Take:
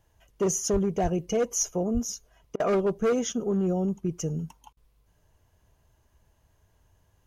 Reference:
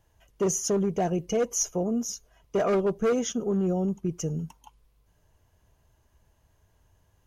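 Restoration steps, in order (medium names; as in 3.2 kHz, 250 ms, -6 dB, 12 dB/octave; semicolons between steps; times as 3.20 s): 0.72–0.84 s: high-pass 140 Hz 24 dB/octave; 1.02–1.14 s: high-pass 140 Hz 24 dB/octave; 1.93–2.05 s: high-pass 140 Hz 24 dB/octave; interpolate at 2.56/4.73 s, 38 ms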